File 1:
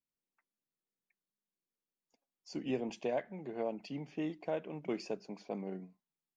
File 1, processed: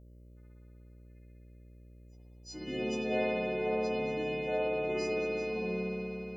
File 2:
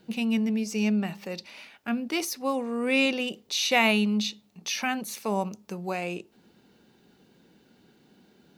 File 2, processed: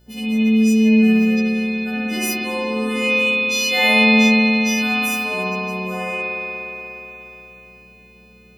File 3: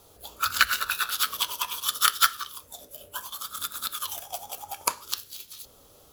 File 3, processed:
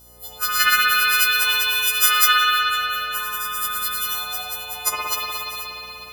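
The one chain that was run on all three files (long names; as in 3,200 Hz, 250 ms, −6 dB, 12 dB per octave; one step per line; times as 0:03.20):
every partial snapped to a pitch grid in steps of 3 semitones
spring reverb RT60 3.9 s, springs 59 ms, chirp 55 ms, DRR −8.5 dB
hum with harmonics 60 Hz, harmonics 10, −49 dBFS −7 dB per octave
level −5 dB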